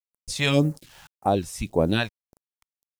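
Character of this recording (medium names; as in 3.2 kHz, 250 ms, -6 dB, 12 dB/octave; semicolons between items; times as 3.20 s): a quantiser's noise floor 10-bit, dither none; random-step tremolo 2.8 Hz, depth 70%; phasing stages 2, 1.8 Hz, lowest notch 270–3200 Hz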